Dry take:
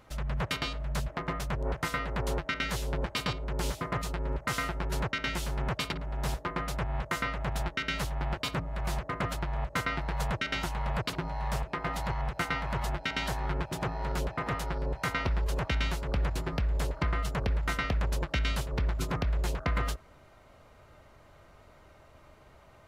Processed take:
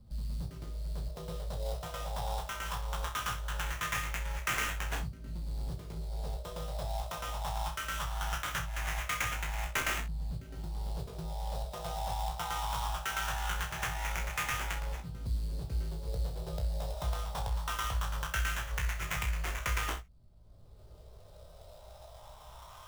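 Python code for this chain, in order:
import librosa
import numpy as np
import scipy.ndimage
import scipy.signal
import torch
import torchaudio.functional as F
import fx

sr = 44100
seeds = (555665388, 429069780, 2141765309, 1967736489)

p1 = fx.tone_stack(x, sr, knobs='10-0-10')
p2 = 10.0 ** (-37.0 / 20.0) * np.tanh(p1 / 10.0 ** (-37.0 / 20.0))
p3 = p1 + (p2 * librosa.db_to_amplitude(-5.0))
p4 = fx.filter_lfo_lowpass(p3, sr, shape='saw_up', hz=0.2, low_hz=230.0, high_hz=3600.0, q=2.8)
p5 = fx.sample_hold(p4, sr, seeds[0], rate_hz=4500.0, jitter_pct=20)
p6 = fx.doubler(p5, sr, ms=18.0, db=-6.0)
p7 = fx.room_early_taps(p6, sr, ms=(31, 63), db=(-7.5, -12.5))
y = fx.band_squash(p7, sr, depth_pct=40)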